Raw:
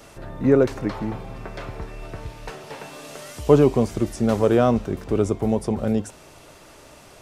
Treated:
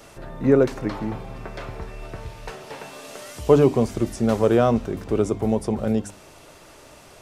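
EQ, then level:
mains-hum notches 50/100/150/200/250/300 Hz
0.0 dB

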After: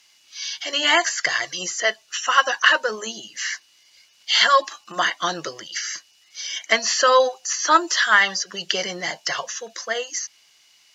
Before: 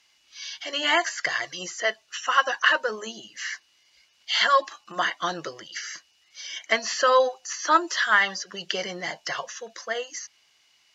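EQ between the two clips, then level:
high-pass filter 70 Hz
high-shelf EQ 4,400 Hz +8.5 dB
+3.0 dB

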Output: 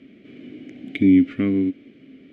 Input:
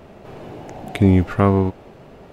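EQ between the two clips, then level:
formant filter i
notch filter 980 Hz, Q 30
+8.5 dB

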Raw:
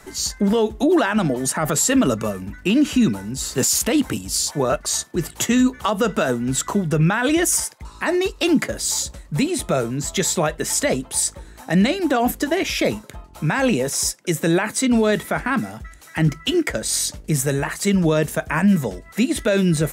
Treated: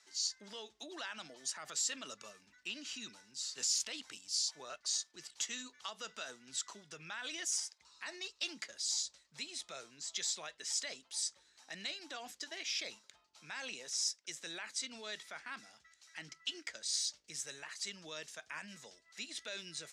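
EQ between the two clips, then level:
resonant band-pass 5,200 Hz, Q 1.7
high-frequency loss of the air 56 metres
−6.5 dB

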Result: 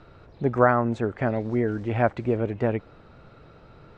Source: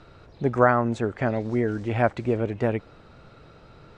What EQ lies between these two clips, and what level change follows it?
high-shelf EQ 4,600 Hz −10.5 dB
0.0 dB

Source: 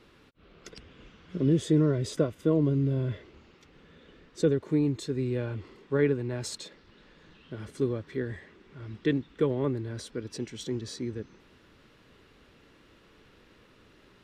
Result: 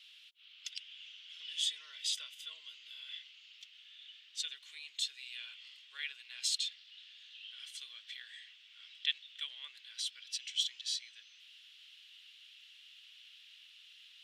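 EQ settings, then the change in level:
four-pole ladder high-pass 2,800 Hz, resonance 65%
+12.5 dB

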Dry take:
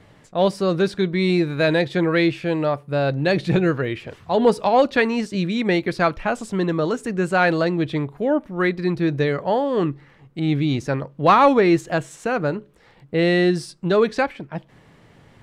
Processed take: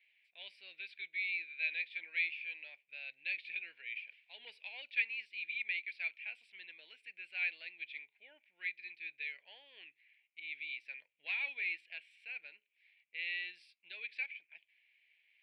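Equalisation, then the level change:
four-pole ladder band-pass 2,500 Hz, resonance 80%
phaser with its sweep stopped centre 2,900 Hz, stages 4
−5.5 dB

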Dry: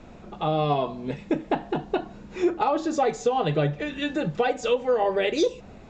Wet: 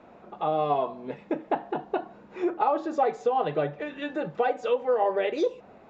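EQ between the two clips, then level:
resonant band-pass 810 Hz, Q 0.7
0.0 dB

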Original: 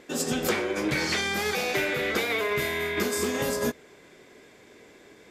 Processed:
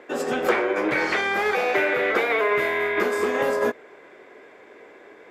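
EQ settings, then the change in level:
three-way crossover with the lows and the highs turned down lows −18 dB, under 340 Hz, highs −19 dB, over 2,300 Hz
+8.5 dB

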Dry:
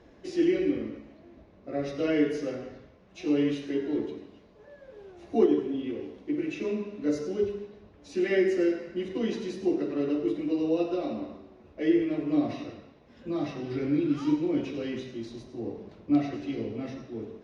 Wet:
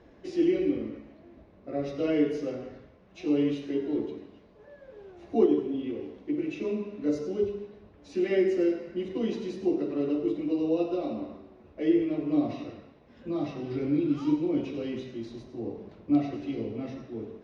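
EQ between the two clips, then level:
low-pass filter 4,000 Hz 6 dB per octave
dynamic equaliser 1,700 Hz, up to −7 dB, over −55 dBFS, Q 2.4
0.0 dB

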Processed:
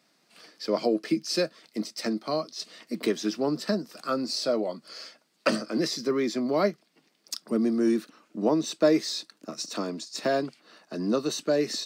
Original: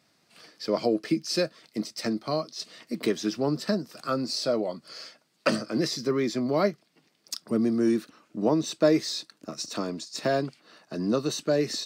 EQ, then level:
high-pass filter 170 Hz 24 dB per octave
0.0 dB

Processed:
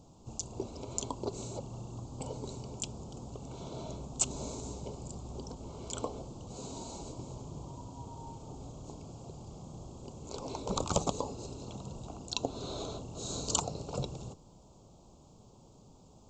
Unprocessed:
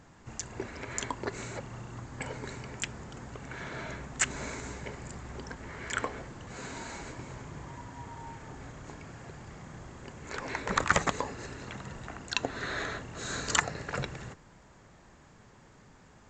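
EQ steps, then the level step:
Butterworth band-reject 1,800 Hz, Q 0.67
0.0 dB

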